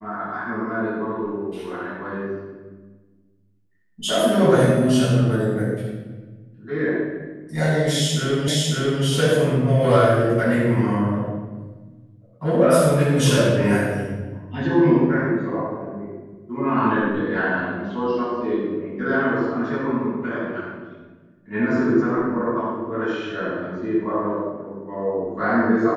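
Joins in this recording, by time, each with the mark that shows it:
8.48 s: repeat of the last 0.55 s

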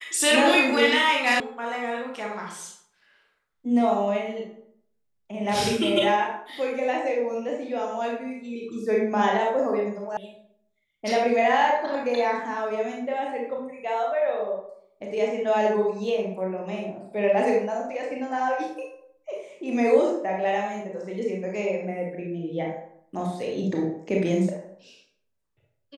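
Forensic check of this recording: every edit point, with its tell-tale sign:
1.40 s: sound stops dead
10.17 s: sound stops dead

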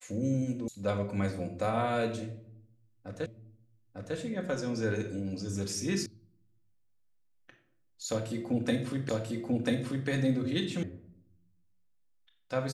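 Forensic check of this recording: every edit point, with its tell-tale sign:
0.68 s: sound stops dead
3.26 s: repeat of the last 0.9 s
6.06 s: sound stops dead
9.09 s: repeat of the last 0.99 s
10.83 s: sound stops dead

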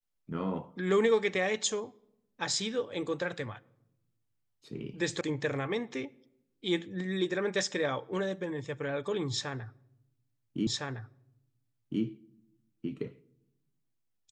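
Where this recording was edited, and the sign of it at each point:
5.21 s: sound stops dead
10.67 s: repeat of the last 1.36 s

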